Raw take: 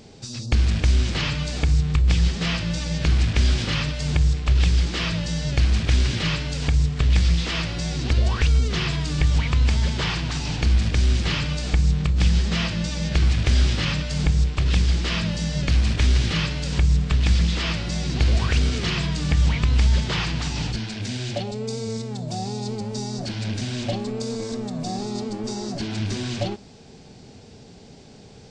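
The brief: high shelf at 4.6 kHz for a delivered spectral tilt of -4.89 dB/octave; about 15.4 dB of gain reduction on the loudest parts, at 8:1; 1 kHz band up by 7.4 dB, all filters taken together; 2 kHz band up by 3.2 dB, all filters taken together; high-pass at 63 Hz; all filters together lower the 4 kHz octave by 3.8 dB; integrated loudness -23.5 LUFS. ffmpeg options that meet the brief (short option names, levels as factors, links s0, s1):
-af "highpass=63,equalizer=f=1000:t=o:g=9,equalizer=f=2000:t=o:g=4,equalizer=f=4000:t=o:g=-4,highshelf=f=4600:g=-6.5,acompressor=threshold=0.0224:ratio=8,volume=4.73"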